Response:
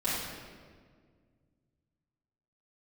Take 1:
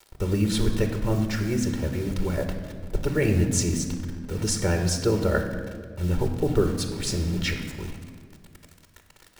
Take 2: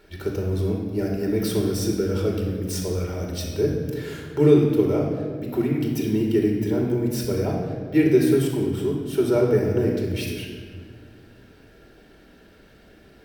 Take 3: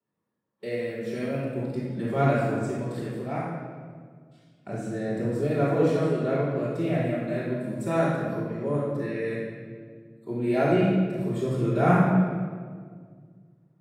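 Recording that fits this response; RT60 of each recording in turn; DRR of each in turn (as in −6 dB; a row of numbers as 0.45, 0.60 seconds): 3; 1.8, 1.8, 1.8 seconds; 5.5, −1.0, −10.0 decibels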